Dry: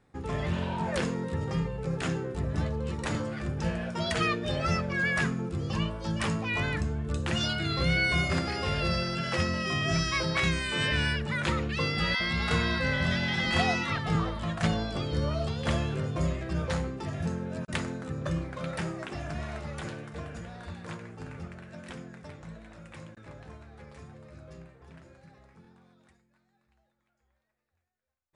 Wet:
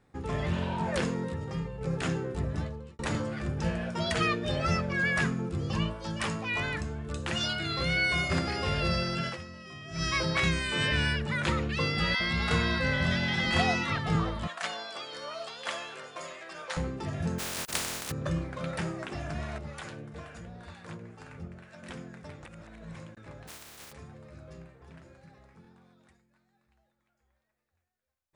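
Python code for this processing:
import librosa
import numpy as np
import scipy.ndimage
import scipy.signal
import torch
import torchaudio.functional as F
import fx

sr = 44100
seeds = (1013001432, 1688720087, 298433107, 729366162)

y = fx.low_shelf(x, sr, hz=350.0, db=-6.0, at=(5.93, 8.31))
y = fx.highpass(y, sr, hz=800.0, slope=12, at=(14.47, 16.77))
y = fx.spec_flatten(y, sr, power=0.18, at=(17.38, 18.1), fade=0.02)
y = fx.harmonic_tremolo(y, sr, hz=2.1, depth_pct=70, crossover_hz=610.0, at=(19.58, 21.83))
y = fx.spec_flatten(y, sr, power=0.18, at=(23.47, 23.91), fade=0.02)
y = fx.edit(y, sr, fx.clip_gain(start_s=1.33, length_s=0.48, db=-4.5),
    fx.fade_out_span(start_s=2.41, length_s=0.58),
    fx.fade_down_up(start_s=9.27, length_s=0.77, db=-15.5, fade_s=0.14, curve='qua'),
    fx.reverse_span(start_s=22.45, length_s=0.5), tone=tone)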